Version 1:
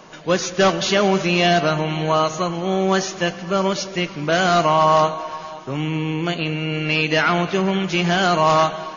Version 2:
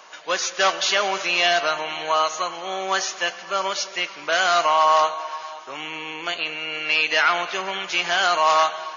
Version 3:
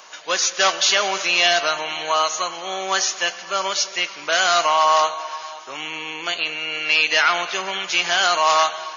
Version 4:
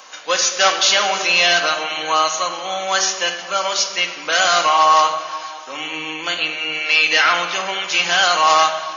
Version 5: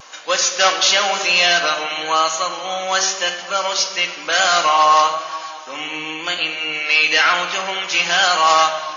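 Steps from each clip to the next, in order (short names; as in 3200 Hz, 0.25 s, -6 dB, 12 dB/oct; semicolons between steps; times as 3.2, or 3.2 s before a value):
HPF 820 Hz 12 dB/oct; gain +1 dB
high shelf 3900 Hz +9 dB
shoebox room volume 3500 m³, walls furnished, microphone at 2.1 m; gain +1.5 dB
vibrato 0.98 Hz 29 cents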